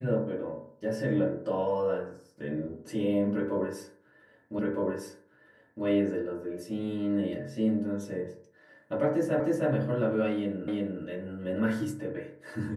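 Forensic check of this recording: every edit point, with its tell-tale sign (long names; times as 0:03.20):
0:04.59: the same again, the last 1.26 s
0:09.40: the same again, the last 0.31 s
0:10.68: the same again, the last 0.35 s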